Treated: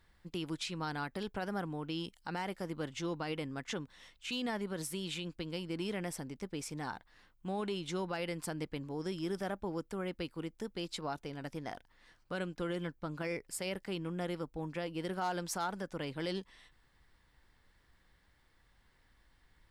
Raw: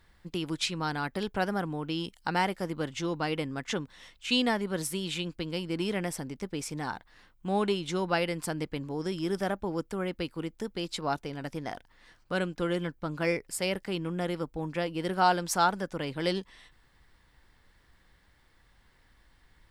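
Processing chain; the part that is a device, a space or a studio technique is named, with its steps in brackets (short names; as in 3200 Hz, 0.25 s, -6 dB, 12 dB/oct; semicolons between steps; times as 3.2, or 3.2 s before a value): clipper into limiter (hard clip -16 dBFS, distortion -28 dB; limiter -22.5 dBFS, peak gain reduction 6.5 dB); gain -5.5 dB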